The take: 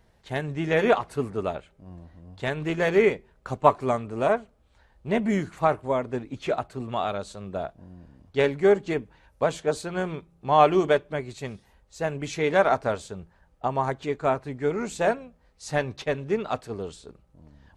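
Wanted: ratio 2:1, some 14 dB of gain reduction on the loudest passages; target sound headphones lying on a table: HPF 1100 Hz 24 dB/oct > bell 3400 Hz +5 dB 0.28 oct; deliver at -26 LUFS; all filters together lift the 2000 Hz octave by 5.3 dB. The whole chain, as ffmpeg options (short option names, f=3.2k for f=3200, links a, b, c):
-af "equalizer=f=2k:t=o:g=6.5,acompressor=threshold=-37dB:ratio=2,highpass=f=1.1k:w=0.5412,highpass=f=1.1k:w=1.3066,equalizer=f=3.4k:t=o:w=0.28:g=5,volume=14.5dB"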